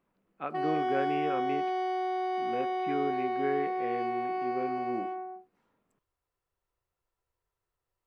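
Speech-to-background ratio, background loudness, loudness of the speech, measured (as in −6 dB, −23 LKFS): −3.5 dB, −32.5 LKFS, −36.0 LKFS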